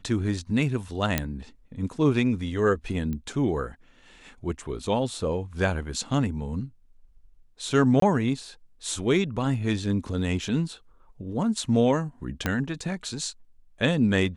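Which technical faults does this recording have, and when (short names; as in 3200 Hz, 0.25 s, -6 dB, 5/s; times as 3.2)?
1.18 pop -7 dBFS
3.13 pop -21 dBFS
8–8.02 gap 23 ms
12.46 pop -10 dBFS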